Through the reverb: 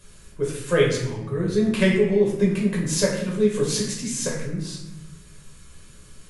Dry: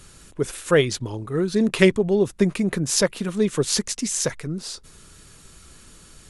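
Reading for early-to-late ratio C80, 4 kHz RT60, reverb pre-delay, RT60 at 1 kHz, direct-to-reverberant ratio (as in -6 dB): 6.5 dB, 0.65 s, 7 ms, 0.80 s, -4.0 dB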